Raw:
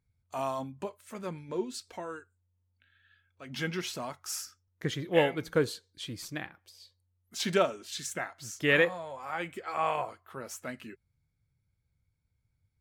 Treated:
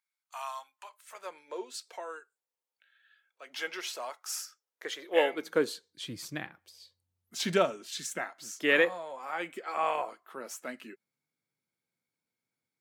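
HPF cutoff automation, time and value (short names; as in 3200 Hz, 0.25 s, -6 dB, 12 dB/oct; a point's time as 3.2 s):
HPF 24 dB/oct
0.85 s 970 Hz
1.4 s 450 Hz
5 s 450 Hz
6.19 s 110 Hz
7.46 s 110 Hz
8.54 s 230 Hz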